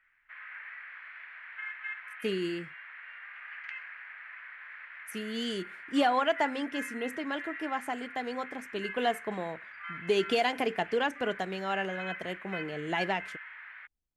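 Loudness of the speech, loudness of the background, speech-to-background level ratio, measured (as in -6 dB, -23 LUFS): -32.5 LUFS, -42.5 LUFS, 10.0 dB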